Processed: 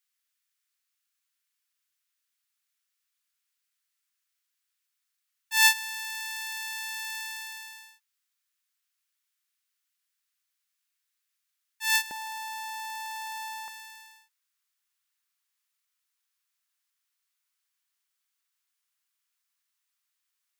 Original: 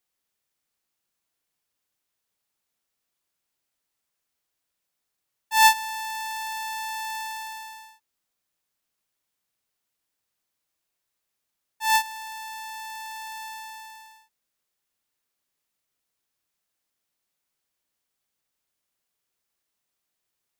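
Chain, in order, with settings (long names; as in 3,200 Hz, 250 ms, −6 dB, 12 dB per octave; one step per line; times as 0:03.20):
high-pass filter 1,300 Hz 24 dB per octave, from 0:12.11 230 Hz, from 0:13.68 1,100 Hz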